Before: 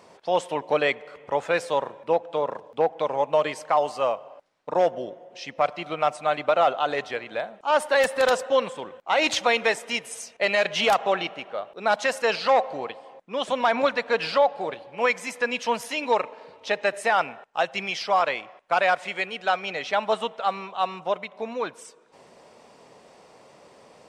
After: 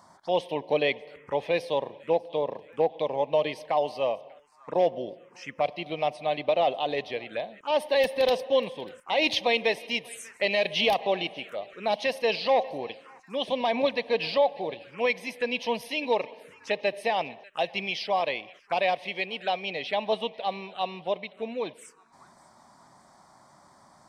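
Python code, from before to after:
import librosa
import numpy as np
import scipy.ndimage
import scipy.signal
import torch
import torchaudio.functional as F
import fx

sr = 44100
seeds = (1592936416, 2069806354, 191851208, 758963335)

y = fx.echo_thinned(x, sr, ms=593, feedback_pct=52, hz=1200.0, wet_db=-21.5)
y = fx.env_phaser(y, sr, low_hz=420.0, high_hz=1400.0, full_db=-27.0)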